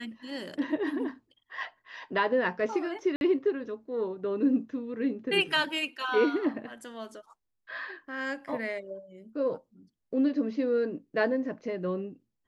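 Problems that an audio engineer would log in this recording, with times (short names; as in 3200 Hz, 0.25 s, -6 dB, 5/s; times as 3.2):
3.16–3.21 gap 51 ms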